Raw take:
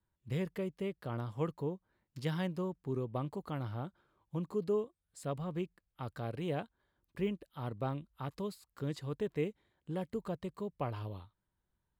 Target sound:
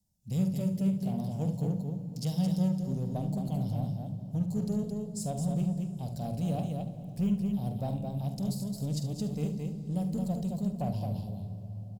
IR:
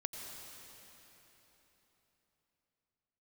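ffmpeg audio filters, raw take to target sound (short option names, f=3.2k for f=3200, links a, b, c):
-filter_complex "[0:a]firequalizer=gain_entry='entry(120,0);entry(190,10);entry(360,-11);entry(700,4);entry(1200,-29);entry(2500,-8);entry(3600,-2);entry(5400,12);entry(8400,9)':delay=0.05:min_phase=1,aecho=1:1:47|218:0.316|0.562,asplit=2[a][b];[b]asoftclip=type=hard:threshold=-36.5dB,volume=-9dB[c];[a][c]amix=inputs=2:normalize=0,asubboost=boost=2:cutoff=110,asplit=2[d][e];[1:a]atrim=start_sample=2205,lowshelf=f=460:g=10.5,adelay=73[f];[e][f]afir=irnorm=-1:irlink=0,volume=-11.5dB[g];[d][g]amix=inputs=2:normalize=0" -ar 44100 -c:a libvorbis -b:a 192k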